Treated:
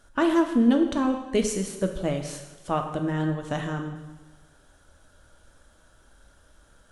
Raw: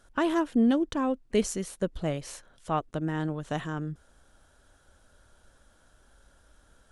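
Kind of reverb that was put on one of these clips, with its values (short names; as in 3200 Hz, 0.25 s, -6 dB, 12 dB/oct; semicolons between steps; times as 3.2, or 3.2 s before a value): two-slope reverb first 0.96 s, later 2.5 s, DRR 4 dB; gain +2 dB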